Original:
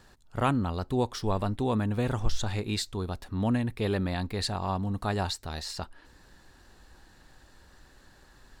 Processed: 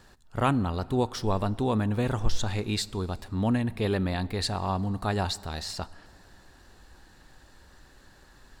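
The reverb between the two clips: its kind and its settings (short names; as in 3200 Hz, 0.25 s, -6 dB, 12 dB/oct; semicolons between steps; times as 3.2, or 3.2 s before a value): plate-style reverb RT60 2.9 s, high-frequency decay 0.6×, DRR 19 dB; gain +1.5 dB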